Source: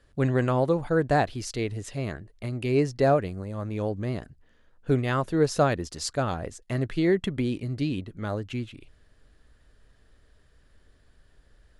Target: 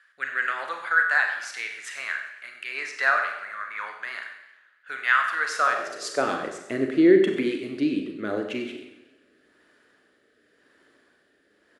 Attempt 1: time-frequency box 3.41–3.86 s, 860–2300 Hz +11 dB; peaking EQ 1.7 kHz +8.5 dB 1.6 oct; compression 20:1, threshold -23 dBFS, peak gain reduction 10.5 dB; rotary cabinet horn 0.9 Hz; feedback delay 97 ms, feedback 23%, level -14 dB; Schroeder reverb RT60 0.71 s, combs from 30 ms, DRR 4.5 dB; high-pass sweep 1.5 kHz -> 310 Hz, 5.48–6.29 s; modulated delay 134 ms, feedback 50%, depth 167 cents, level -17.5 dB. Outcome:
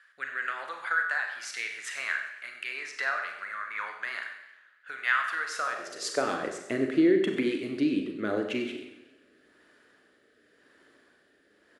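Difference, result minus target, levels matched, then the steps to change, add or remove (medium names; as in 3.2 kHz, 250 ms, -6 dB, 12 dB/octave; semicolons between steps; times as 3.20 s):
compression: peak gain reduction +10.5 dB
remove: compression 20:1, threshold -23 dBFS, peak gain reduction 10.5 dB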